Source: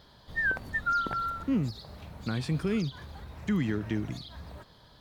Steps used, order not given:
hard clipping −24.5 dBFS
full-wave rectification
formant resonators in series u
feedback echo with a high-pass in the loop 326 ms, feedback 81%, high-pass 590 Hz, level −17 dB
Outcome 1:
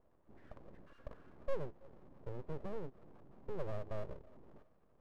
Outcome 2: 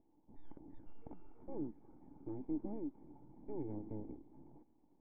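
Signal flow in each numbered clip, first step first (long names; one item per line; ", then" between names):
feedback echo with a high-pass in the loop, then hard clipping, then formant resonators in series, then full-wave rectification
feedback echo with a high-pass in the loop, then full-wave rectification, then formant resonators in series, then hard clipping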